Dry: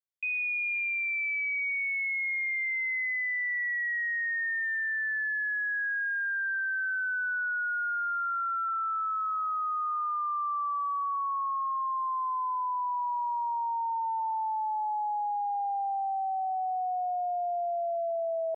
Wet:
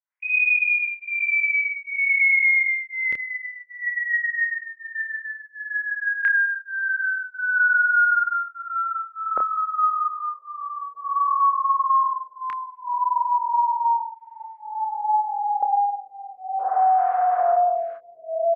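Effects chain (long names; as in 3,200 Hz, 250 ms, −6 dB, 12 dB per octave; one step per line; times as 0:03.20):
linear-prediction vocoder at 8 kHz whisper
octave-band graphic EQ 500/1,000/2,000 Hz +12/+11/+11 dB
spring reverb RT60 1.2 s, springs 49 ms, chirp 80 ms, DRR −6.5 dB
auto-filter band-pass square 0.16 Hz 570–2,000 Hz
0:03.80–0:05.02: dynamic equaliser 1,700 Hz, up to +3 dB, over −38 dBFS, Q 1.6
0:16.58–0:17.96: noise in a band 510–1,500 Hz −33 dBFS
double-tracking delay 28 ms −8 dB
brickwall limiter −12.5 dBFS, peak gain reduction 10.5 dB
phaser with staggered stages 0.54 Hz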